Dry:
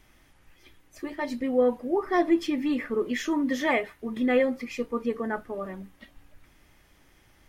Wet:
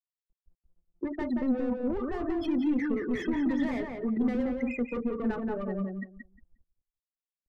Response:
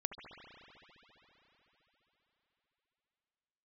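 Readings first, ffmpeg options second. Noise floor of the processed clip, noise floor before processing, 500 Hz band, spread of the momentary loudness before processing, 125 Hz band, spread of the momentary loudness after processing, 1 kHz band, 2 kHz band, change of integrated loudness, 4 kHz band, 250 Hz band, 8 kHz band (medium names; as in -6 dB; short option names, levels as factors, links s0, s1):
under -85 dBFS, -61 dBFS, -7.0 dB, 12 LU, no reading, 7 LU, -8.5 dB, -8.0 dB, -3.5 dB, -10.0 dB, -0.5 dB, under -15 dB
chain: -filter_complex "[0:a]afftfilt=real='re*gte(hypot(re,im),0.0316)':imag='im*gte(hypot(re,im),0.0316)':win_size=1024:overlap=0.75,asplit=2[s0][s1];[s1]highpass=f=720:p=1,volume=20,asoftclip=type=tanh:threshold=0.266[s2];[s0][s2]amix=inputs=2:normalize=0,lowpass=f=1000:p=1,volume=0.501,alimiter=limit=0.141:level=0:latency=1,acrossover=split=230[s3][s4];[s4]acompressor=threshold=0.0141:ratio=6[s5];[s3][s5]amix=inputs=2:normalize=0,asplit=2[s6][s7];[s7]adelay=178,lowpass=f=2300:p=1,volume=0.708,asplit=2[s8][s9];[s9]adelay=178,lowpass=f=2300:p=1,volume=0.18,asplit=2[s10][s11];[s11]adelay=178,lowpass=f=2300:p=1,volume=0.18[s12];[s6][s8][s10][s12]amix=inputs=4:normalize=0"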